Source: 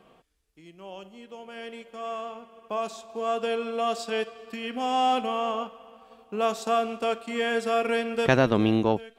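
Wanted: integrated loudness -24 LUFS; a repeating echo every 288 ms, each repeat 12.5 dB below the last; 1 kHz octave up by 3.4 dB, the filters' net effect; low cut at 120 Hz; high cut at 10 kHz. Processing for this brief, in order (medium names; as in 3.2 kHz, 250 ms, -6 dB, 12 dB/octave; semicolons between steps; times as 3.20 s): high-pass 120 Hz; low-pass 10 kHz; peaking EQ 1 kHz +5 dB; feedback delay 288 ms, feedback 24%, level -12.5 dB; trim +1.5 dB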